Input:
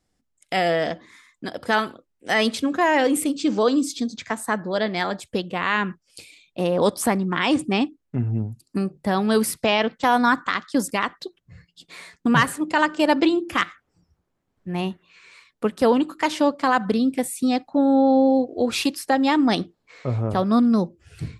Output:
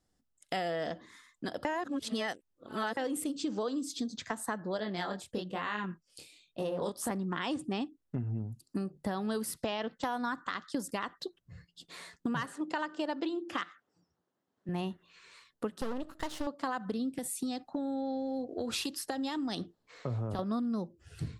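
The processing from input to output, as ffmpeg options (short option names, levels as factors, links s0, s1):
-filter_complex "[0:a]asettb=1/sr,asplit=3[s0][s1][s2];[s0]atrim=end=4.774[s3];[s1]atrim=start=4.77:end=7.11,asetpts=PTS-STARTPTS,afade=t=in:d=0.004:c=qsin,afade=t=out:st=2.336:d=0.004:c=qsin,flanger=delay=18.5:depth=8:speed=1.1[s4];[s2]atrim=start=7.106[s5];[s3][s4]acrossfade=d=0.004:c1=hsin:c2=qsin[s6];[s6][s5]acrossfade=d=0.004:c1=qsin:c2=hsin,asettb=1/sr,asplit=3[s7][s8][s9];[s7]atrim=end=12.464[s10];[s8]atrim=start=12.46:end=14.69,asetpts=PTS-STARTPTS,afade=t=in:d=0.004:c=qsin,afade=t=out:st=2.226:d=0.004:c=qsin,highpass=210,lowpass=6900[s11];[s9]atrim=start=14.686[s12];[s10][s11]acrossfade=d=0.004:c1=hsin:c2=qsin[s13];[s13][s12]acrossfade=d=0.004:c1=qsin:c2=hsin,asettb=1/sr,asplit=3[s14][s15][s16];[s14]atrim=end=15.814[s17];[s15]atrim=start=15.81:end=16.47,asetpts=PTS-STARTPTS,afade=t=in:d=0.004:c=qsin,afade=t=out:st=0.656:d=0.004:c=qsin,aeval=exprs='max(val(0),0)':c=same[s18];[s16]atrim=start=16.466[s19];[s17][s18]acrossfade=d=0.004:c1=hsin:c2=qsin[s20];[s20][s19]acrossfade=d=0.004:c1=qsin:c2=hsin,asettb=1/sr,asplit=3[s21][s22][s23];[s21]atrim=end=17.184[s24];[s22]atrim=start=17.18:end=20.39,asetpts=PTS-STARTPTS,afade=t=in:d=0.004:c=qsin,afade=t=out:st=3.206:d=0.004:c=qsin,acrossover=split=130|3000[s25][s26][s27];[s26]acompressor=threshold=0.0708:ratio=6:attack=3.2:release=140:knee=2.83:detection=peak[s28];[s25][s28][s27]amix=inputs=3:normalize=0[s29];[s23]atrim=start=20.386[s30];[s24][s29]acrossfade=d=0.004:c1=hsin:c2=qsin[s31];[s31][s30]acrossfade=d=0.004:c1=qsin:c2=hsin,asplit=3[s32][s33][s34];[s32]atrim=end=1.652[s35];[s33]atrim=start=1.648:end=2.972,asetpts=PTS-STARTPTS,areverse[s36];[s34]atrim=start=2.968[s37];[s35][s36]acrossfade=d=0.004:c1=hsin:c2=hsin[s38];[s38][s37]acrossfade=d=0.004:c1=hsin:c2=hsin,equalizer=f=2300:t=o:w=0.28:g=-8,acompressor=threshold=0.0447:ratio=6,volume=0.596"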